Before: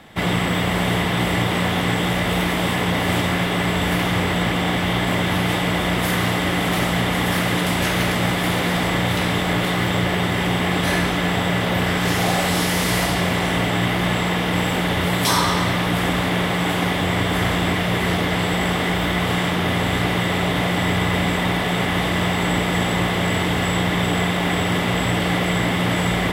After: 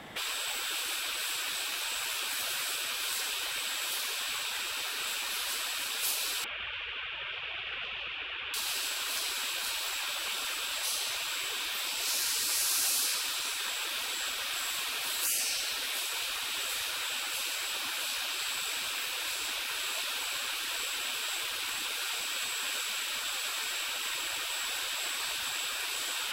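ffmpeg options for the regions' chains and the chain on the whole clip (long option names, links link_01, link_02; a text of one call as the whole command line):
ffmpeg -i in.wav -filter_complex "[0:a]asettb=1/sr,asplit=3[link_01][link_02][link_03];[link_01]atrim=end=6.444[link_04];[link_02]atrim=start=6.44:end=8.54,asetpts=PTS-STARTPTS,afade=type=in:duration=0.004:curve=qsin,afade=type=out:start_time=2.096:duration=0.004:curve=qsin,highpass=110,equalizer=frequency=110:width_type=q:width=4:gain=-6,equalizer=frequency=280:width_type=q:width=4:gain=7,equalizer=frequency=930:width_type=q:width=4:gain=6,lowpass=frequency=2300:width=0.5412,lowpass=frequency=2300:width=1.3066,aecho=1:1:145|290|435|580|725|870:0.501|0.246|0.12|0.059|0.0289|0.0142,atrim=end_sample=92610[link_05];[link_03]atrim=start=8.536[link_06];[link_04][link_05]acrossfade=duration=0.004:curve1=hsin:curve2=qsin[link_07];[link_07][link_06]acrossfade=duration=0.004:curve1=qsin:curve2=hsin,afftfilt=real='re*lt(hypot(re,im),0.0794)':imag='im*lt(hypot(re,im),0.0794)':win_size=1024:overlap=0.75,lowshelf=frequency=160:gain=-8.5" out.wav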